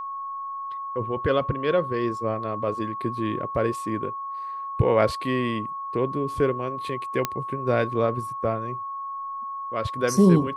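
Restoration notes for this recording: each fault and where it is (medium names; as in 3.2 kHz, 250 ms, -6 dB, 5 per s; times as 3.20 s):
whine 1.1 kHz -30 dBFS
7.25 s: pop -8 dBFS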